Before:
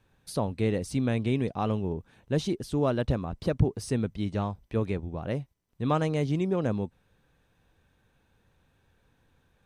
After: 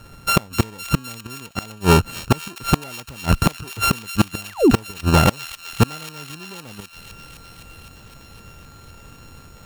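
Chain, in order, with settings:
samples sorted by size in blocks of 32 samples
dynamic equaliser 2,900 Hz, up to +4 dB, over −52 dBFS, Q 5.1
sound drawn into the spectrogram fall, 0:04.49–0:04.71, 210–2,300 Hz −32 dBFS
in parallel at −5 dB: soft clipping −20 dBFS, distortion −15 dB
on the sum: gate with flip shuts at −18 dBFS, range −35 dB
sine wavefolder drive 7 dB, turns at −15 dBFS
on a send: delay with a high-pass on its return 256 ms, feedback 82%, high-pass 2,400 Hz, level −10.5 dB
on the sum: level +8.5 dB

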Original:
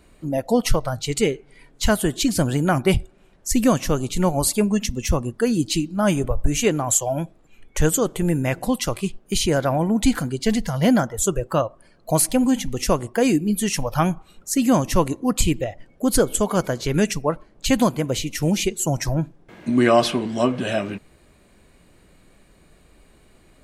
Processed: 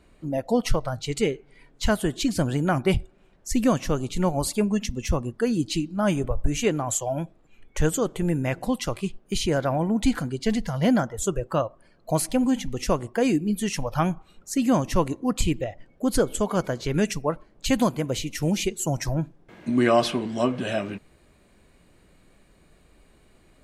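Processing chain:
high-shelf EQ 8,000 Hz −9.5 dB, from 0:17.04 −3 dB
level −3.5 dB

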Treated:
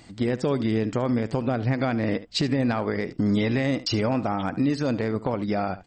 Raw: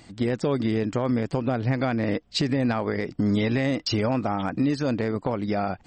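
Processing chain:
single-tap delay 73 ms −16 dB

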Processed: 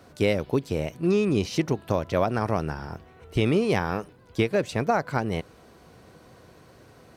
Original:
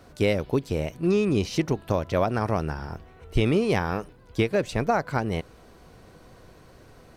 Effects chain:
high-pass filter 78 Hz

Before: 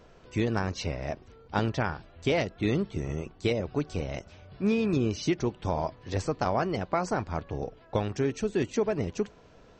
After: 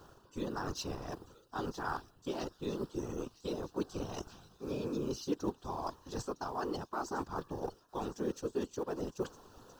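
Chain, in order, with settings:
mu-law and A-law mismatch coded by A
low-shelf EQ 280 Hz −4.5 dB
reversed playback
downward compressor 12 to 1, threshold −42 dBFS, peak gain reduction 19.5 dB
reversed playback
phaser with its sweep stopped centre 580 Hz, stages 6
random phases in short frames
on a send: delay with a high-pass on its return 959 ms, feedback 54%, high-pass 4,600 Hz, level −12 dB
on the sum: level +11.5 dB

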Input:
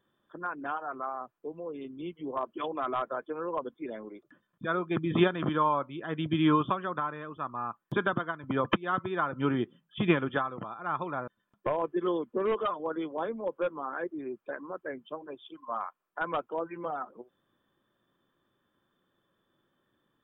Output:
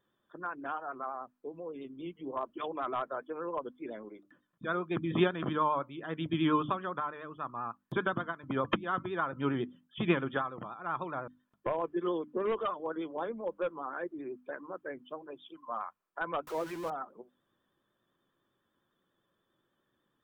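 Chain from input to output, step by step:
0:16.47–0:16.90: converter with a step at zero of −37.5 dBFS
pitch vibrato 10 Hz 44 cents
mains-hum notches 50/100/150/200/250/300 Hz
level −3 dB

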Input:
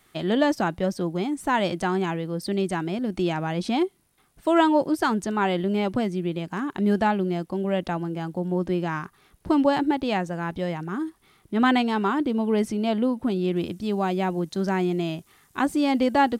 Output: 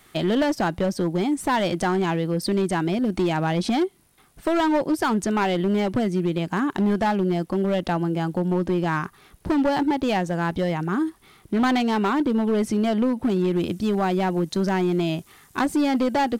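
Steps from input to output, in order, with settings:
downward compressor 2 to 1, threshold −26 dBFS, peak gain reduction 7.5 dB
hard clipping −23 dBFS, distortion −15 dB
level +6.5 dB

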